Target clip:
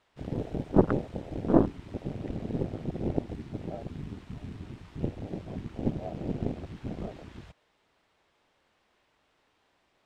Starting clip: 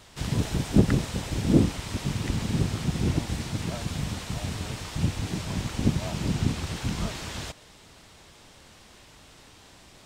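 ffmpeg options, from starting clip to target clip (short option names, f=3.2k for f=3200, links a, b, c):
-af "aeval=exprs='0.668*(cos(1*acos(clip(val(0)/0.668,-1,1)))-cos(1*PI/2))+0.0944*(cos(6*acos(clip(val(0)/0.668,-1,1)))-cos(6*PI/2))+0.0168*(cos(7*acos(clip(val(0)/0.668,-1,1)))-cos(7*PI/2))':c=same,afwtdn=0.0251,bass=f=250:g=-11,treble=f=4k:g=-14,volume=3dB"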